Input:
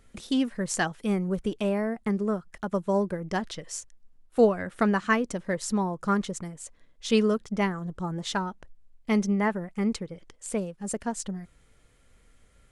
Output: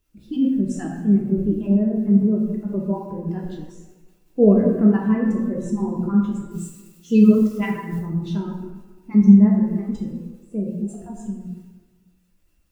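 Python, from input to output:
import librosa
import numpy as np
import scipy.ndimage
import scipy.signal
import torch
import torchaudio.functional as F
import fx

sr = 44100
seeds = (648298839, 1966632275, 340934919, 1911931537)

y = fx.spec_dropout(x, sr, seeds[0], share_pct=20)
y = fx.low_shelf(y, sr, hz=430.0, db=11.0)
y = fx.quant_dither(y, sr, seeds[1], bits=8, dither='triangular')
y = fx.small_body(y, sr, hz=(320.0, 2700.0), ring_ms=25, db=9)
y = fx.transient(y, sr, attack_db=-2, sustain_db=7)
y = fx.high_shelf(y, sr, hz=2400.0, db=11.0, at=(6.51, 8.0))
y = fx.rev_plate(y, sr, seeds[2], rt60_s=1.9, hf_ratio=0.55, predelay_ms=0, drr_db=-3.0)
y = fx.spectral_expand(y, sr, expansion=1.5)
y = F.gain(torch.from_numpy(y), -4.0).numpy()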